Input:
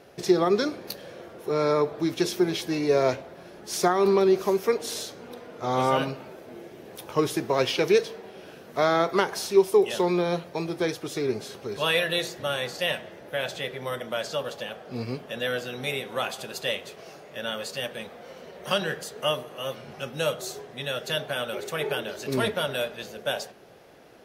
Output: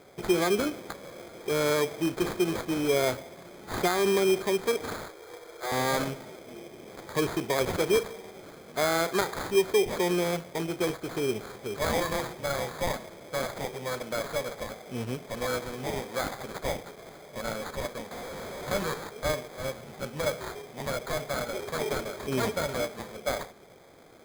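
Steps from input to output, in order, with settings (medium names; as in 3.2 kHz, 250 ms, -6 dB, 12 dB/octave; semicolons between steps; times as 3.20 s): 18.11–19.09 s: one-bit delta coder 32 kbps, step -31 dBFS; in parallel at +1 dB: peak limiter -18 dBFS, peak gain reduction 9.5 dB; 4.95–5.72 s: on the sum: rippled Chebyshev high-pass 320 Hz, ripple 3 dB; sample-rate reducer 2.8 kHz, jitter 0%; trim -8 dB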